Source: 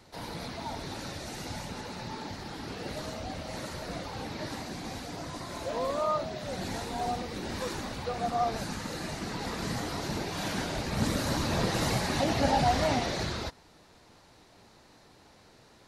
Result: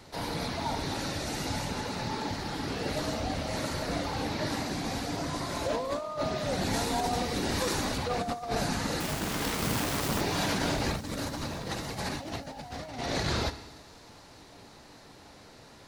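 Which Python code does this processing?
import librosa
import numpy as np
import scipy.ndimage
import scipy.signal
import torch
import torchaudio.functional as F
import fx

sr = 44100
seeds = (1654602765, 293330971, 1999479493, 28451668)

p1 = fx.self_delay(x, sr, depth_ms=0.94, at=(9.0, 10.21))
p2 = 10.0 ** (-23.0 / 20.0) * np.tanh(p1 / 10.0 ** (-23.0 / 20.0))
p3 = p1 + F.gain(torch.from_numpy(p2), -8.0).numpy()
p4 = fx.rev_fdn(p3, sr, rt60_s=1.2, lf_ratio=1.05, hf_ratio=0.95, size_ms=21.0, drr_db=11.0)
p5 = fx.over_compress(p4, sr, threshold_db=-30.0, ratio=-0.5)
p6 = fx.high_shelf(p5, sr, hz=5400.0, db=6.0, at=(6.73, 7.98))
y = p6 + fx.echo_wet_highpass(p6, sr, ms=299, feedback_pct=75, hz=5200.0, wet_db=-19.0, dry=0)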